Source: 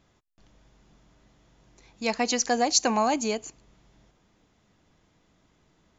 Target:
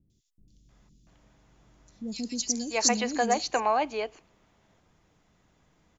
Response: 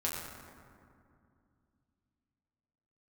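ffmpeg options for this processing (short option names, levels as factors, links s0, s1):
-filter_complex "[0:a]acrossover=split=320|3900[s0][s1][s2];[s2]adelay=100[s3];[s1]adelay=690[s4];[s0][s4][s3]amix=inputs=3:normalize=0"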